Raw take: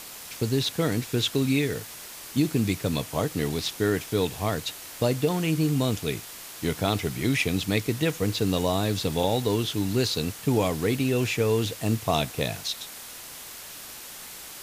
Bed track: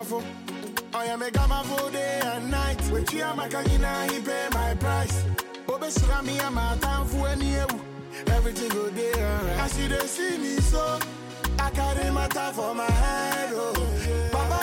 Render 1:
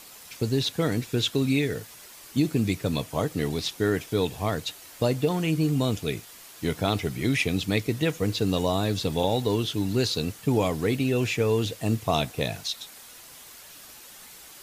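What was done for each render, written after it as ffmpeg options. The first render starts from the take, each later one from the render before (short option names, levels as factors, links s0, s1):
-af "afftdn=nr=7:nf=-42"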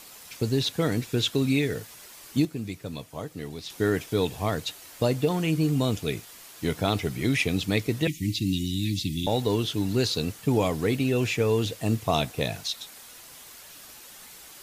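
-filter_complex "[0:a]asettb=1/sr,asplit=3[s0][s1][s2];[s0]atrim=end=8.074[s3];[s1]atrim=start=8.07:end=9.27,asetpts=PTS-STARTPTS,afade=t=in:d=0.004:c=qsin,afade=t=out:st=1.196:d=0.004:c=qsin,asuperstop=centerf=830:order=20:qfactor=0.52[s4];[s2]atrim=start=9.266[s5];[s3][s4]acrossfade=d=0.004:c1=hsin:c2=qsin[s6];[s6][s5]acrossfade=d=0.004:c1=qsin:c2=hsin,asplit=3[s7][s8][s9];[s7]atrim=end=2.452[s10];[s8]atrim=start=2.448:end=3.702,asetpts=PTS-STARTPTS,volume=0.355[s11];[s9]atrim=start=3.698[s12];[s10][s11]acrossfade=d=0.004:c1=hsin:c2=hsin[s13];[s13][s12]acrossfade=d=0.004:c1=hsin:c2=hsin"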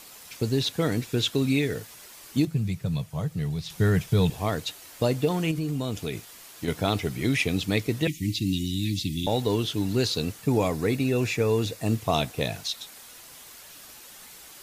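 -filter_complex "[0:a]asettb=1/sr,asplit=3[s0][s1][s2];[s0]atrim=end=2.474[s3];[s1]atrim=start=2.47:end=4.3,asetpts=PTS-STARTPTS,afade=t=in:d=0.004:c=qsin,afade=t=out:st=1.826:d=0.004:c=qsin,lowshelf=f=210:t=q:w=3:g=7.5[s4];[s2]atrim=start=4.296[s5];[s3][s4]acrossfade=d=0.004:c1=hsin:c2=qsin[s6];[s6][s5]acrossfade=d=0.004:c1=qsin:c2=hsin,asettb=1/sr,asplit=3[s7][s8][s9];[s7]atrim=end=5.514[s10];[s8]atrim=start=5.51:end=6.68,asetpts=PTS-STARTPTS,afade=t=in:d=0.004:c=qsin,afade=t=out:st=1.166:d=0.004:c=qsin,acompressor=threshold=0.0562:ratio=5:attack=3.2:release=140:knee=1:detection=peak[s11];[s9]atrim=start=6.676[s12];[s10][s11]acrossfade=d=0.004:c1=hsin:c2=qsin[s13];[s13][s12]acrossfade=d=0.004:c1=qsin:c2=hsin,asettb=1/sr,asplit=3[s14][s15][s16];[s14]atrim=end=10.424[s17];[s15]atrim=start=10.42:end=11.87,asetpts=PTS-STARTPTS,afade=t=in:d=0.004:c=qsin,afade=t=out:st=1.446:d=0.004:c=qsin,bandreject=f=3100:w=6.1[s18];[s16]atrim=start=11.866[s19];[s17][s18]acrossfade=d=0.004:c1=hsin:c2=qsin[s20];[s20][s19]acrossfade=d=0.004:c1=qsin:c2=hsin"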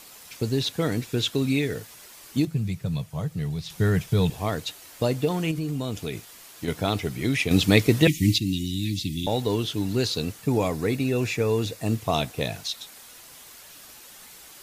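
-filter_complex "[0:a]asplit=3[s0][s1][s2];[s0]atrim=end=7.512[s3];[s1]atrim=start=7.508:end=8.382,asetpts=PTS-STARTPTS,volume=2.37[s4];[s2]atrim=start=8.378[s5];[s3][s4]acrossfade=d=0.004:c1=hsin:c2=hsin[s6];[s6][s5]acrossfade=d=0.004:c1=hsin:c2=hsin"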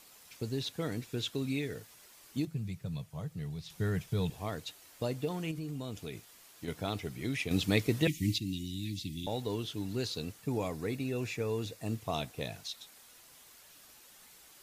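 -af "volume=0.299"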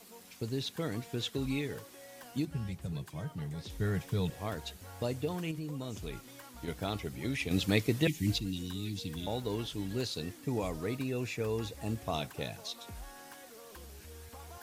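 -filter_complex "[1:a]volume=0.0562[s0];[0:a][s0]amix=inputs=2:normalize=0"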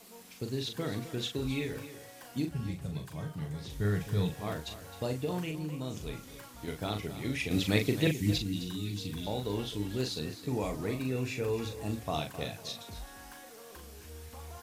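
-filter_complex "[0:a]asplit=2[s0][s1];[s1]adelay=39,volume=0.501[s2];[s0][s2]amix=inputs=2:normalize=0,aecho=1:1:262:0.224"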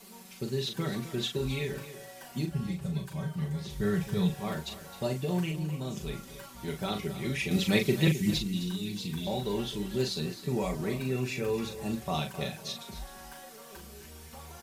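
-af "equalizer=f=120:t=o:w=1.1:g=3,aecho=1:1:5.2:0.86"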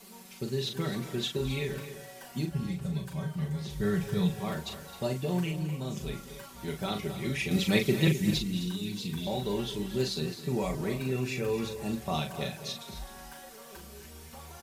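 -filter_complex "[0:a]asplit=2[s0][s1];[s1]adelay=215.7,volume=0.2,highshelf=f=4000:g=-4.85[s2];[s0][s2]amix=inputs=2:normalize=0"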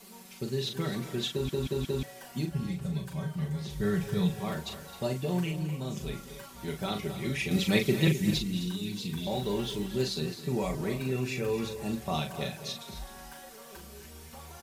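-filter_complex "[0:a]asettb=1/sr,asplit=3[s0][s1][s2];[s0]atrim=end=9.314[s3];[s1]atrim=start=9.31:end=9.87,asetpts=PTS-STARTPTS,afade=t=in:d=0.004:c=qsin,afade=t=out:st=0.556:d=0.004:c=qsin,aeval=exprs='val(0)+0.5*0.00447*sgn(val(0))':c=same[s4];[s2]atrim=start=9.866[s5];[s3][s4]acrossfade=d=0.004:c1=hsin:c2=qsin[s6];[s6][s5]acrossfade=d=0.004:c1=qsin:c2=hsin,asplit=5[s7][s8][s9][s10][s11];[s7]atrim=end=1.492[s12];[s8]atrim=start=1.308:end=1.492[s13];[s9]atrim=start=1.308:end=1.492[s14];[s10]atrim=start=1.308:end=1.492[s15];[s11]atrim=start=2.028[s16];[s12][s13]acrossfade=d=0.004:c1=hsin:c2=hsin[s17];[s17][s14]acrossfade=d=0.004:c1=hsin:c2=hsin[s18];[s18][s15]acrossfade=d=0.004:c1=hsin:c2=hsin[s19];[s19][s16]acrossfade=d=0.004:c1=hsin:c2=hsin"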